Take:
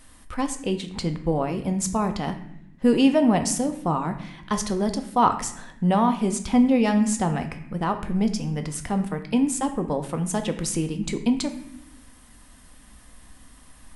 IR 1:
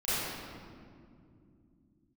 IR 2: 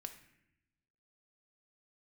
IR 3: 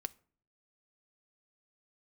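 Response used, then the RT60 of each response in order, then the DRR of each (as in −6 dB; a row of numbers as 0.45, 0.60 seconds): 2; 2.5, 0.80, 0.50 seconds; −15.0, 6.5, 12.5 decibels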